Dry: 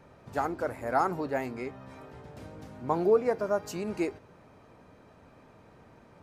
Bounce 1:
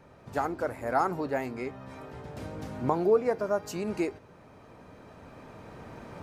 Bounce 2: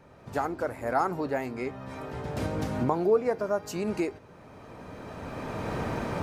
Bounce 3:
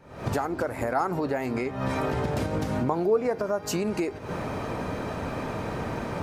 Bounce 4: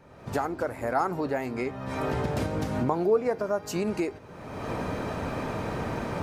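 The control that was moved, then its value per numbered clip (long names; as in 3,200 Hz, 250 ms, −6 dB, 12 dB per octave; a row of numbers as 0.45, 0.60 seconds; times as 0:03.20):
camcorder AGC, rising by: 5.5, 14, 88, 36 dB per second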